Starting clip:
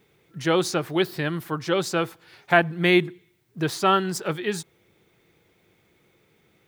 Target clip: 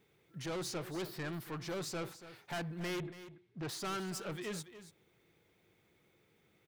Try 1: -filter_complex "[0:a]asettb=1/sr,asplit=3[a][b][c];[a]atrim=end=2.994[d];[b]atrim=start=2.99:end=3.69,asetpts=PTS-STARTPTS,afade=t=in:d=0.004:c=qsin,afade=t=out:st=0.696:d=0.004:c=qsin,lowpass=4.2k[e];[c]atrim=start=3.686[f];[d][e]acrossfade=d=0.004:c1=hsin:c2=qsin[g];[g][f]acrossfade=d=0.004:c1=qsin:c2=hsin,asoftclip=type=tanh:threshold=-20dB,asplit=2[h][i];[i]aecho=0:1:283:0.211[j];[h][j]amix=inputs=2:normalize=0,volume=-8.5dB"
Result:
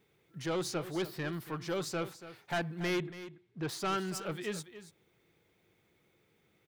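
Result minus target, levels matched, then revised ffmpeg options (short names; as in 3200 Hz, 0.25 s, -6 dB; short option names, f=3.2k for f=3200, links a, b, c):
soft clip: distortion -4 dB
-filter_complex "[0:a]asettb=1/sr,asplit=3[a][b][c];[a]atrim=end=2.994[d];[b]atrim=start=2.99:end=3.69,asetpts=PTS-STARTPTS,afade=t=in:d=0.004:c=qsin,afade=t=out:st=0.696:d=0.004:c=qsin,lowpass=4.2k[e];[c]atrim=start=3.686[f];[d][e]acrossfade=d=0.004:c1=hsin:c2=qsin[g];[g][f]acrossfade=d=0.004:c1=qsin:c2=hsin,asoftclip=type=tanh:threshold=-28dB,asplit=2[h][i];[i]aecho=0:1:283:0.211[j];[h][j]amix=inputs=2:normalize=0,volume=-8.5dB"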